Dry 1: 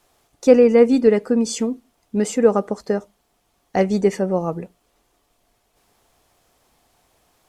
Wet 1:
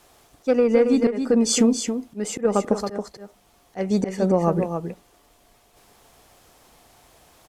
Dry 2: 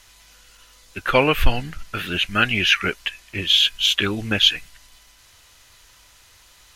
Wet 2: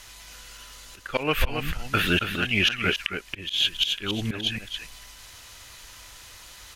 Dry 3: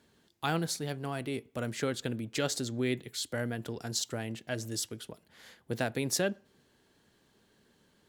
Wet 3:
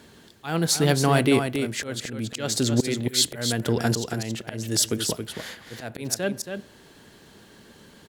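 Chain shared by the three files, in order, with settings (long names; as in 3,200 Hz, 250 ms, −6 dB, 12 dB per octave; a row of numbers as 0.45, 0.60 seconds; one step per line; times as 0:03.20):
harmonic generator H 2 −32 dB, 3 −21 dB, 4 −30 dB, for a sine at −1 dBFS
volume swells 435 ms
downward compressor 12 to 1, threshold −24 dBFS
on a send: single-tap delay 275 ms −7 dB
on the sum: normalise the peak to −6 dBFS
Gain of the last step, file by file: +10.0, +8.0, +18.5 decibels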